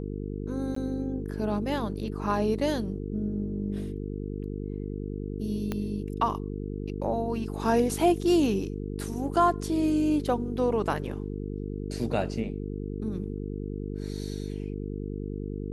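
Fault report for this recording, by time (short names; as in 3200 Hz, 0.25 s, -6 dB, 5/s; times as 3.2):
buzz 50 Hz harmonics 9 -34 dBFS
0.75–0.76 gap 14 ms
5.72 pop -17 dBFS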